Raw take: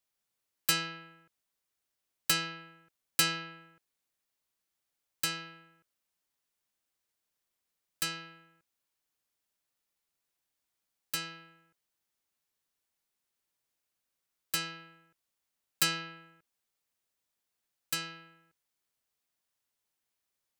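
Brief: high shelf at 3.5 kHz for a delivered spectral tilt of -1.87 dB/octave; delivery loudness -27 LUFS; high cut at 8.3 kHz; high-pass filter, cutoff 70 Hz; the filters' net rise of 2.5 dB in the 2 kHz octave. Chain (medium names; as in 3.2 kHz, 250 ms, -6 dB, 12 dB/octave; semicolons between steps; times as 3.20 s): high-pass 70 Hz; low-pass 8.3 kHz; peaking EQ 2 kHz +5.5 dB; treble shelf 3.5 kHz -7.5 dB; trim +8.5 dB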